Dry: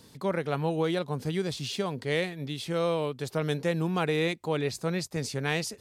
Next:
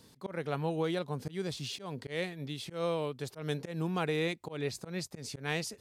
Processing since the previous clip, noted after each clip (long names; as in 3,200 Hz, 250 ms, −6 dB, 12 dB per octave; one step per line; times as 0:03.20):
volume swells 144 ms
level −4.5 dB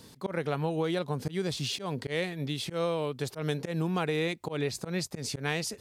downward compressor 3 to 1, threshold −34 dBFS, peak gain reduction 5.5 dB
level +7 dB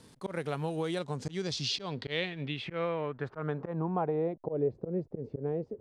slack as between gear wheels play −51 dBFS
low-pass filter sweep 10,000 Hz → 460 Hz, 0:00.80–0:04.77
level −3.5 dB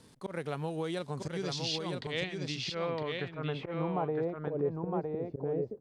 single-tap delay 961 ms −4 dB
level −2 dB